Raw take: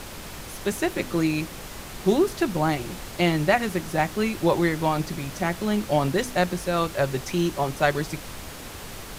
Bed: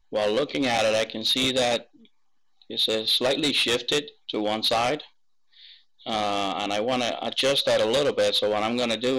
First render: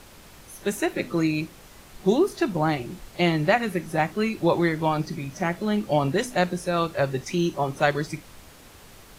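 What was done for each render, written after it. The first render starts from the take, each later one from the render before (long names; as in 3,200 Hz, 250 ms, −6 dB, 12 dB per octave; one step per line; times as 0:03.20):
noise reduction from a noise print 10 dB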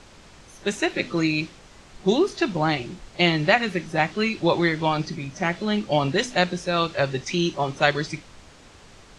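low-pass filter 7,800 Hz 24 dB per octave
dynamic equaliser 3,500 Hz, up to +8 dB, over −44 dBFS, Q 0.71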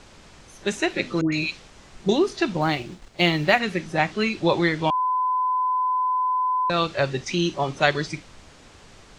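0:01.21–0:02.09: all-pass dispersion highs, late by 115 ms, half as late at 1,200 Hz
0:02.61–0:03.60: mu-law and A-law mismatch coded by A
0:04.90–0:06.70: beep over 1,010 Hz −19.5 dBFS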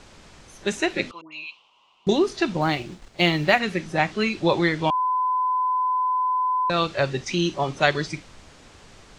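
0:01.11–0:02.07: pair of resonant band-passes 1,700 Hz, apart 1.5 octaves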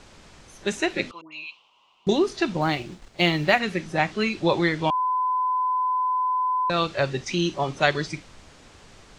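level −1 dB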